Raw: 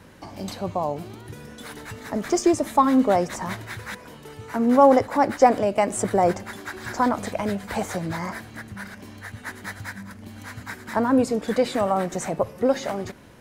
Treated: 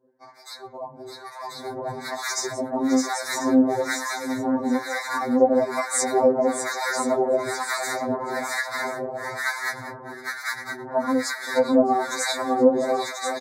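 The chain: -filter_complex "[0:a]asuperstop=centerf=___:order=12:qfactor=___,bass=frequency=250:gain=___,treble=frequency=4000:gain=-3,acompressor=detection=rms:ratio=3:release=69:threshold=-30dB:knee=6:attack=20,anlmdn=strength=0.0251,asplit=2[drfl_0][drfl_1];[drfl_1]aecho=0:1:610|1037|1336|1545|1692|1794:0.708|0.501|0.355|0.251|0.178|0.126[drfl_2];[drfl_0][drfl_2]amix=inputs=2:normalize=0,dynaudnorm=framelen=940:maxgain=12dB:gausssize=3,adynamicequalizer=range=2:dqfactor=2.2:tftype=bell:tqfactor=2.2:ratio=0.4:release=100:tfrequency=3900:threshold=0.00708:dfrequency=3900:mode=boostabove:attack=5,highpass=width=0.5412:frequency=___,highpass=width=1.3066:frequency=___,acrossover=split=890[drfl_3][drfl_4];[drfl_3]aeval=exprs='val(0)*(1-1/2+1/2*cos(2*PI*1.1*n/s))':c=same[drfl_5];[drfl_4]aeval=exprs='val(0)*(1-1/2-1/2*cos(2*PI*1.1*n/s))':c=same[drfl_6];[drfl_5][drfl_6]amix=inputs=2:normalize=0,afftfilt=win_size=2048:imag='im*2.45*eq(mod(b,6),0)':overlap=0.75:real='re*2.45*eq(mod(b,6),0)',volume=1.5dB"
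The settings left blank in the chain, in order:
2900, 2.2, -13, 42, 42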